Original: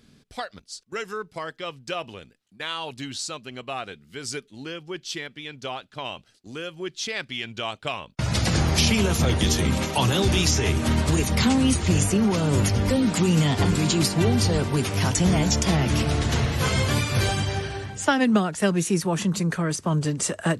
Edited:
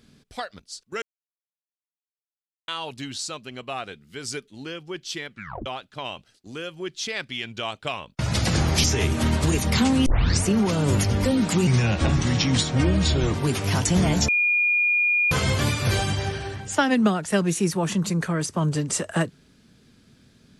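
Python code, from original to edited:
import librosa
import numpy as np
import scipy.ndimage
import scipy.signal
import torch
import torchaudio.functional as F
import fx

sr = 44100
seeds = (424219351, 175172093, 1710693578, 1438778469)

y = fx.edit(x, sr, fx.silence(start_s=1.02, length_s=1.66),
    fx.tape_stop(start_s=5.3, length_s=0.36),
    fx.cut(start_s=8.84, length_s=1.65),
    fx.tape_start(start_s=11.71, length_s=0.38),
    fx.speed_span(start_s=13.32, length_s=1.33, speed=0.79),
    fx.bleep(start_s=15.58, length_s=1.03, hz=2430.0, db=-17.5), tone=tone)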